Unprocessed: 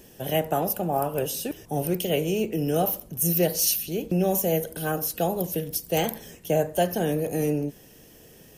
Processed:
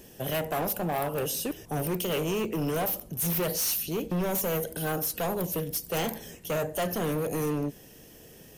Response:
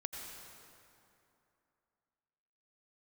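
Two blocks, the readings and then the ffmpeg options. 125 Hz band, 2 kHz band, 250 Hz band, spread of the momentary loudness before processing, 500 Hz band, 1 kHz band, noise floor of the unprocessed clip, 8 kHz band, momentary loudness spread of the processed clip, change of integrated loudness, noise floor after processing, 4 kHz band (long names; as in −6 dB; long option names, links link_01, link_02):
−3.5 dB, −0.5 dB, −4.0 dB, 7 LU, −5.0 dB, −4.0 dB, −51 dBFS, −3.5 dB, 6 LU, −4.0 dB, −51 dBFS, −2.5 dB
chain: -af "asoftclip=type=hard:threshold=-25.5dB"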